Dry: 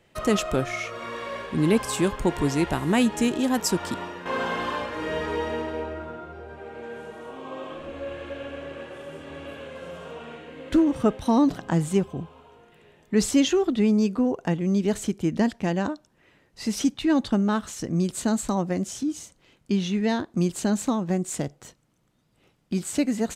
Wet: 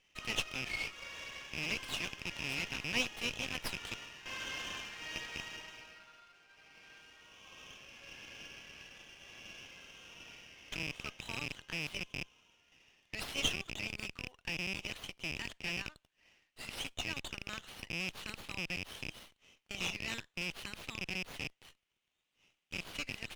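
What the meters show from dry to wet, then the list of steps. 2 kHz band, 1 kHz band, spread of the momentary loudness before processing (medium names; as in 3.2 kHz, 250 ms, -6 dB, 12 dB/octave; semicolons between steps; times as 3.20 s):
-4.0 dB, -19.0 dB, 17 LU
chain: rattle on loud lows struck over -31 dBFS, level -23 dBFS; ladder band-pass 3.2 kHz, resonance 50%; sliding maximum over 5 samples; trim +5.5 dB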